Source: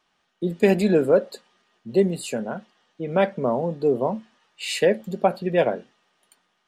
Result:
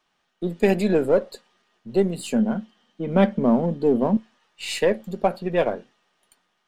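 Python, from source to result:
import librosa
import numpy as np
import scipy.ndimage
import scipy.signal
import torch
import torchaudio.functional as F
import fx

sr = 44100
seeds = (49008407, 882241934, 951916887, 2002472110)

y = np.where(x < 0.0, 10.0 ** (-3.0 / 20.0) * x, x)
y = fx.small_body(y, sr, hz=(220.0, 3100.0), ring_ms=45, db=13, at=(2.17, 4.17))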